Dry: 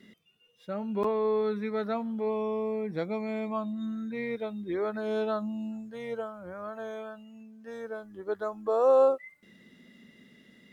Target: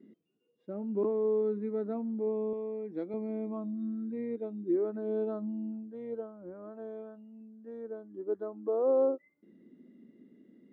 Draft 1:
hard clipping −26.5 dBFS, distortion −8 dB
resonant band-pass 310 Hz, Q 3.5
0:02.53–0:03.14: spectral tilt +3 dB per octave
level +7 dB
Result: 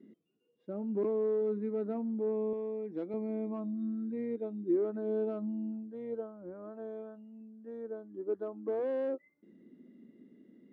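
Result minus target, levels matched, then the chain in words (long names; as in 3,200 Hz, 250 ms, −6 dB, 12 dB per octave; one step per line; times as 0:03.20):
hard clipping: distortion +34 dB
hard clipping −14.5 dBFS, distortion −42 dB
resonant band-pass 310 Hz, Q 3.5
0:02.53–0:03.14: spectral tilt +3 dB per octave
level +7 dB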